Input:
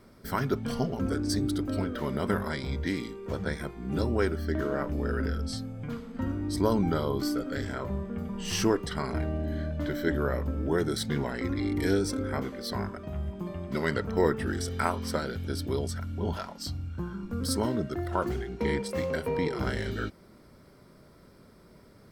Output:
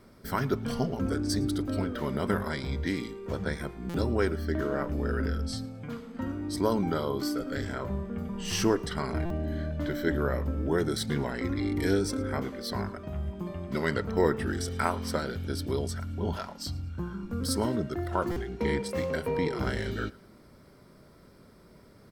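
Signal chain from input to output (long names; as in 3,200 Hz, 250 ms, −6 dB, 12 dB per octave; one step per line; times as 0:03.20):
0:05.65–0:07.40: low-shelf EQ 110 Hz −9.5 dB
repeating echo 110 ms, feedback 32%, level −23 dB
buffer that repeats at 0:03.89/0:09.25/0:18.31, samples 256, times 8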